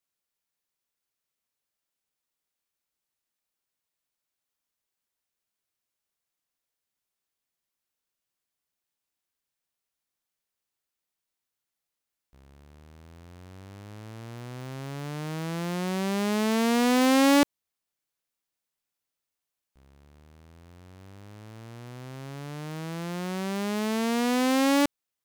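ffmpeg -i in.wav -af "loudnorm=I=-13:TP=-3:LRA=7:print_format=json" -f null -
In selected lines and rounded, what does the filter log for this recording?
"input_i" : "-26.4",
"input_tp" : "-12.2",
"input_lra" : "18.0",
"input_thresh" : "-38.7",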